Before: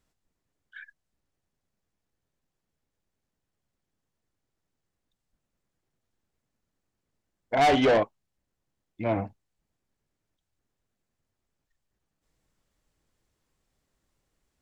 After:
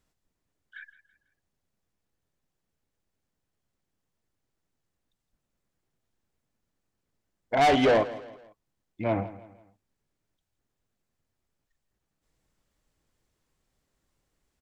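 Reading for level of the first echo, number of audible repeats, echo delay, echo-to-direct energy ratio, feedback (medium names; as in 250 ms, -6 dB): -16.5 dB, 3, 165 ms, -15.5 dB, 40%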